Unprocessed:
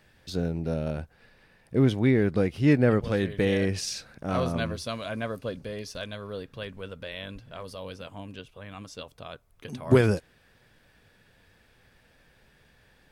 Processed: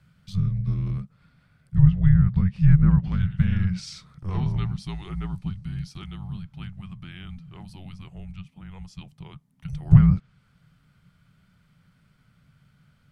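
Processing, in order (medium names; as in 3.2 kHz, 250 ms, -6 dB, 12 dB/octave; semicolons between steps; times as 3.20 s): low-pass that closes with the level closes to 2.2 kHz, closed at -17.5 dBFS; frequency shift -280 Hz; resonant low shelf 200 Hz +8.5 dB, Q 3; trim -6 dB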